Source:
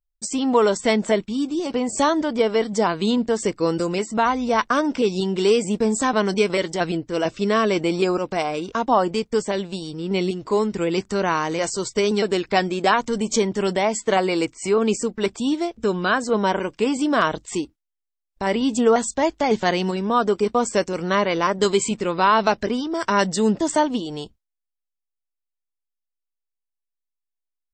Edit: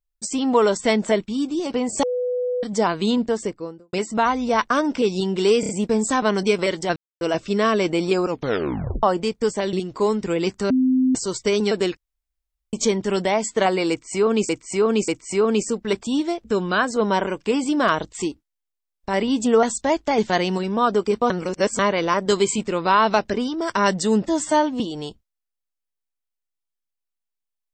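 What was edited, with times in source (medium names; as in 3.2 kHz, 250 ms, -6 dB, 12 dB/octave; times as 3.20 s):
2.03–2.63 s: bleep 496 Hz -20.5 dBFS
3.17–3.93 s: studio fade out
5.60 s: stutter 0.03 s, 4 plays
6.87–7.12 s: mute
8.18 s: tape stop 0.76 s
9.64–10.24 s: delete
11.21–11.66 s: bleep 258 Hz -14.5 dBFS
12.48–13.24 s: room tone
14.41–15.00 s: loop, 3 plays
20.63–21.12 s: reverse
23.59–23.95 s: stretch 1.5×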